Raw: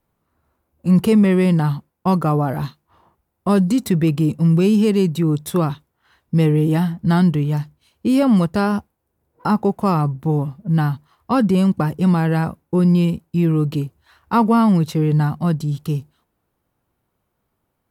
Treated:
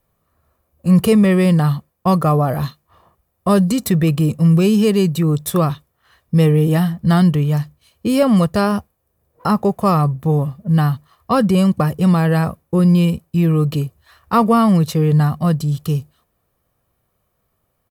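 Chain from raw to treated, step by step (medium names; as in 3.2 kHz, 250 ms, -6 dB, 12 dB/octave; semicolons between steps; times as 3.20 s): treble shelf 8.5 kHz +6 dB; comb 1.7 ms, depth 41%; trim +2.5 dB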